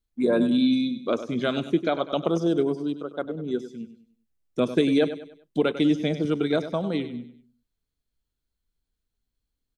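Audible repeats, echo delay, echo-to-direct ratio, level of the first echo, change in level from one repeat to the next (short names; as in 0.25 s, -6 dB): 3, 98 ms, -11.5 dB, -12.0 dB, -8.5 dB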